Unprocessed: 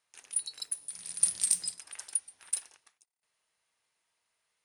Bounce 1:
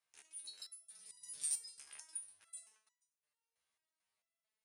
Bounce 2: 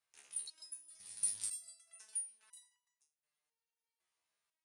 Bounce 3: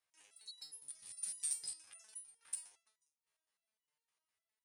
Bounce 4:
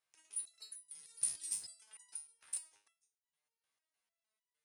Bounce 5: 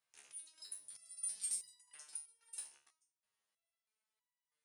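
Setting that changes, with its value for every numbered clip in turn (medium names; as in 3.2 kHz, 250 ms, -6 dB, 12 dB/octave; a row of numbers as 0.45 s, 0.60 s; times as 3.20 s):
resonator arpeggio, rate: 4.5 Hz, 2 Hz, 9.8 Hz, 6.6 Hz, 3.1 Hz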